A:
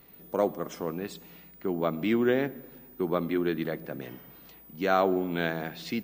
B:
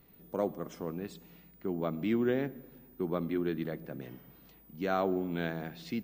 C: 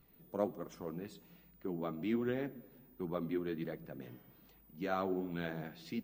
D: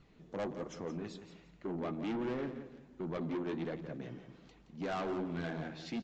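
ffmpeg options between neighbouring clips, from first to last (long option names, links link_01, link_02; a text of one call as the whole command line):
ffmpeg -i in.wav -af "lowshelf=frequency=290:gain=8,volume=-8dB" out.wav
ffmpeg -i in.wav -af "flanger=delay=0.7:depth=9.2:regen=47:speed=1.3:shape=sinusoidal,volume=-1dB" out.wav
ffmpeg -i in.wav -af "aresample=16000,asoftclip=type=tanh:threshold=-38dB,aresample=44100,aecho=1:1:171|342|513:0.282|0.0705|0.0176,volume=5dB" out.wav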